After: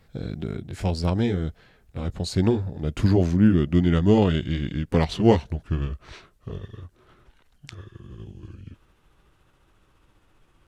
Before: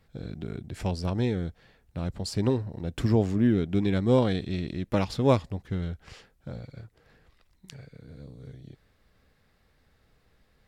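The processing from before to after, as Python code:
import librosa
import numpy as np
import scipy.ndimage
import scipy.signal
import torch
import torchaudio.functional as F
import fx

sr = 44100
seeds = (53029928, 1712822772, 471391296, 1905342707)

y = fx.pitch_glide(x, sr, semitones=-6.5, runs='starting unshifted')
y = y * 10.0 ** (6.0 / 20.0)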